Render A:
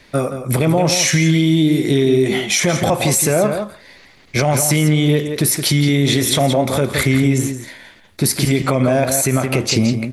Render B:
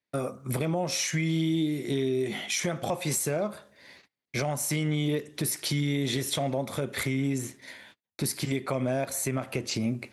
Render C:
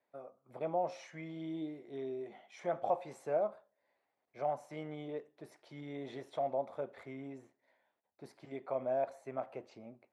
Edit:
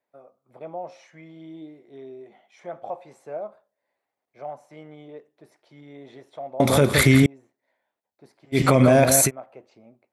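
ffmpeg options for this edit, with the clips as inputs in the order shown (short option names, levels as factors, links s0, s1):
-filter_complex "[0:a]asplit=2[s0][s1];[2:a]asplit=3[s2][s3][s4];[s2]atrim=end=6.602[s5];[s0]atrim=start=6.598:end=7.262[s6];[s3]atrim=start=7.258:end=8.58[s7];[s1]atrim=start=8.52:end=9.31[s8];[s4]atrim=start=9.25[s9];[s5][s6]acrossfade=d=0.004:c1=hsin:c2=hsin[s10];[s10][s7]acrossfade=d=0.004:c1=hsin:c2=hsin[s11];[s11][s8]acrossfade=d=0.06:c1=tri:c2=tri[s12];[s12][s9]acrossfade=d=0.06:c1=tri:c2=tri"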